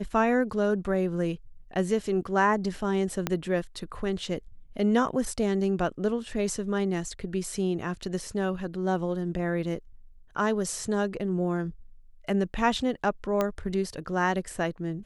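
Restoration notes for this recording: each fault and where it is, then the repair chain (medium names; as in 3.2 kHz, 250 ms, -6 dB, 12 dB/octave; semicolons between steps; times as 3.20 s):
3.27 s: pop -11 dBFS
13.41 s: pop -13 dBFS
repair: de-click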